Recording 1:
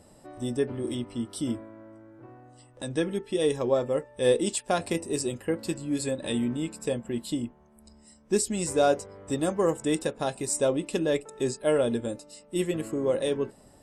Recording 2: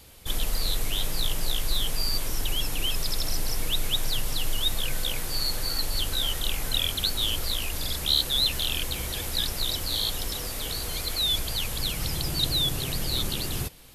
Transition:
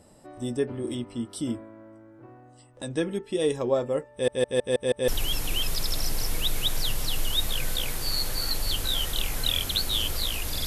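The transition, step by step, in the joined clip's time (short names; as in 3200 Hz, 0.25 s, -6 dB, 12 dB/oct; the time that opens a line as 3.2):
recording 1
4.12 stutter in place 0.16 s, 6 plays
5.08 switch to recording 2 from 2.36 s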